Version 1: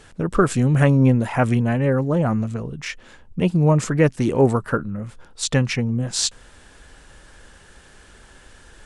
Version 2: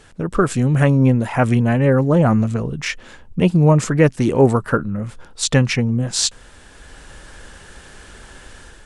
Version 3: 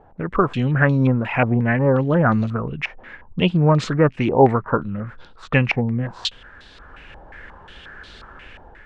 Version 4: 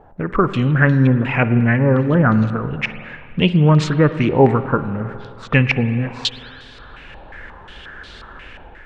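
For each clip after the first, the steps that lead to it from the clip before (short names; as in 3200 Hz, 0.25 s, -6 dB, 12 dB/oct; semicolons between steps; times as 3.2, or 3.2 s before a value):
AGC gain up to 7 dB
stepped low-pass 5.6 Hz 800–4000 Hz; gain -3.5 dB
spring tank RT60 2.2 s, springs 46/51 ms, chirp 65 ms, DRR 11.5 dB; dynamic EQ 720 Hz, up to -6 dB, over -32 dBFS, Q 1.2; gain +3.5 dB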